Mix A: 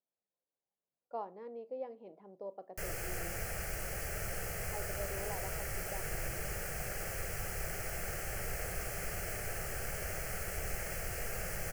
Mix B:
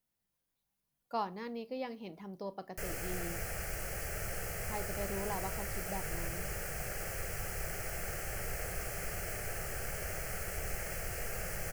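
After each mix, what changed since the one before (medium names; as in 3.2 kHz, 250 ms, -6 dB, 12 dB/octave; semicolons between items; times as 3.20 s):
speech: remove band-pass filter 540 Hz, Q 2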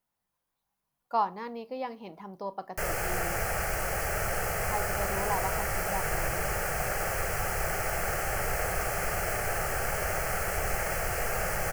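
background +6.5 dB; master: add peaking EQ 970 Hz +10.5 dB 1.3 oct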